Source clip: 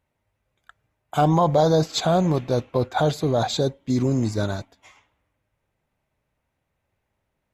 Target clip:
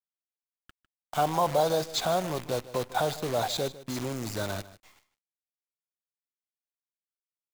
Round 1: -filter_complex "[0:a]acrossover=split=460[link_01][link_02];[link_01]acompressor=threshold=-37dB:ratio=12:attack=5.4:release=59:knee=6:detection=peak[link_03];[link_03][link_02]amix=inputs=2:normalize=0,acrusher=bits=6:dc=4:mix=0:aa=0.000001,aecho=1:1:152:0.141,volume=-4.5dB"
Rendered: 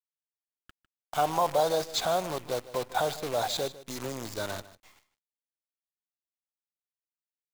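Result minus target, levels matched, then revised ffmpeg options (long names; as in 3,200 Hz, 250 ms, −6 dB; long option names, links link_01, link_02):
downward compressor: peak gain reduction +6.5 dB
-filter_complex "[0:a]acrossover=split=460[link_01][link_02];[link_01]acompressor=threshold=-30dB:ratio=12:attack=5.4:release=59:knee=6:detection=peak[link_03];[link_03][link_02]amix=inputs=2:normalize=0,acrusher=bits=6:dc=4:mix=0:aa=0.000001,aecho=1:1:152:0.141,volume=-4.5dB"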